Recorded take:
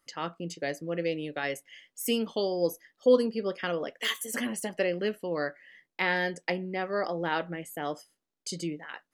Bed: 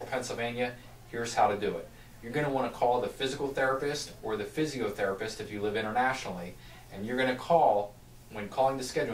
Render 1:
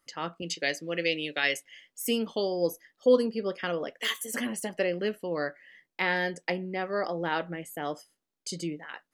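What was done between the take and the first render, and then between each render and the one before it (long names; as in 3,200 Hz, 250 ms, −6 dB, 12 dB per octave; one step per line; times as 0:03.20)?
0:00.42–0:01.65: meter weighting curve D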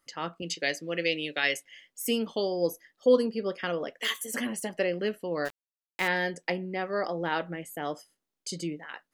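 0:05.45–0:06.08: centre clipping without the shift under −35 dBFS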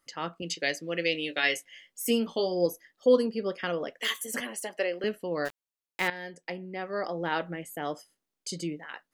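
0:01.13–0:02.66: double-tracking delay 17 ms −7.5 dB
0:04.40–0:05.04: high-pass filter 410 Hz
0:06.10–0:07.35: fade in, from −13.5 dB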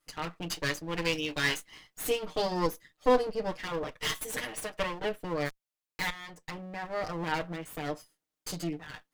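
lower of the sound and its delayed copy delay 6.5 ms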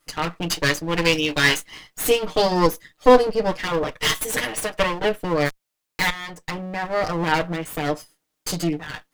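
level +11 dB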